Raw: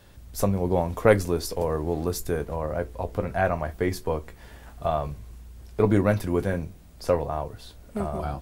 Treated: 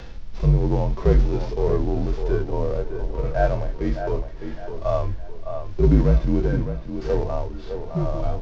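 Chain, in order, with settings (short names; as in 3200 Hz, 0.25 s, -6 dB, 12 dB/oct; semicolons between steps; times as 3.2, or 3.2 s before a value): CVSD 32 kbps; frequency shift -49 Hz; tilt -1.5 dB/oct; upward compressor, threshold -29 dBFS; harmonic-percussive split percussive -18 dB; on a send: tape echo 0.609 s, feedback 38%, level -7 dB, low-pass 2400 Hz; on the sum: gain +5 dB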